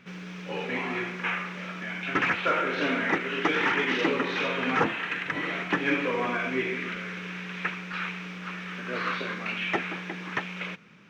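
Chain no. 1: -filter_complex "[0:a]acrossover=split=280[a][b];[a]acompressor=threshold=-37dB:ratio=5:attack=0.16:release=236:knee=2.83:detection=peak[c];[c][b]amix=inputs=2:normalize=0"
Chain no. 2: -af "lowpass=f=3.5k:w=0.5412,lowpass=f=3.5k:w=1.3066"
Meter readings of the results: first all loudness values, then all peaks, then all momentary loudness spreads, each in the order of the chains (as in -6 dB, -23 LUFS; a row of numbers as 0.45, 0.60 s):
-29.0, -29.0 LUFS; -12.5, -11.5 dBFS; 11, 11 LU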